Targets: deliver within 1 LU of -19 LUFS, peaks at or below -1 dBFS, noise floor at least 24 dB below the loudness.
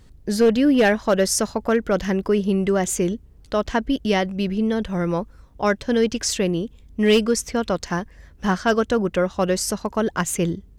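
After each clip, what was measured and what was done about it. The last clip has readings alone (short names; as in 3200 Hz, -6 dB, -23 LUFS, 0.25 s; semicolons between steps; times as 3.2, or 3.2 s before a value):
clipped 0.7%; flat tops at -10.0 dBFS; loudness -21.5 LUFS; peak -10.0 dBFS; loudness target -19.0 LUFS
-> clip repair -10 dBFS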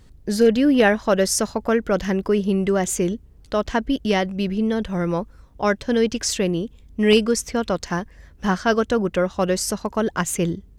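clipped 0.0%; loudness -21.5 LUFS; peak -2.5 dBFS; loudness target -19.0 LUFS
-> gain +2.5 dB; limiter -1 dBFS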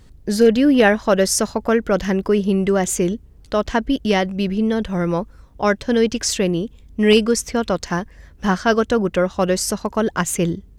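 loudness -19.0 LUFS; peak -1.0 dBFS; noise floor -47 dBFS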